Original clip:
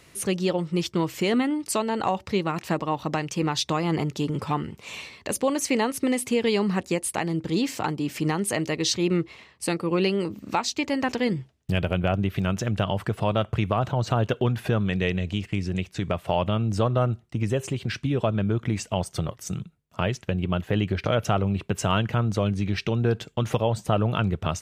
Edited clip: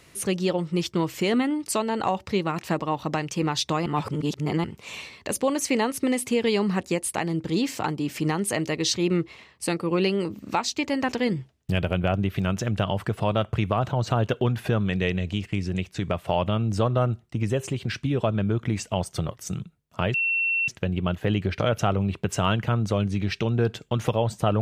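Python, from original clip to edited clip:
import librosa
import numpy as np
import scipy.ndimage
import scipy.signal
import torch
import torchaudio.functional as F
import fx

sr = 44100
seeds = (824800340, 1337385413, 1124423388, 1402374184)

y = fx.edit(x, sr, fx.reverse_span(start_s=3.86, length_s=0.78),
    fx.insert_tone(at_s=20.14, length_s=0.54, hz=2710.0, db=-21.0), tone=tone)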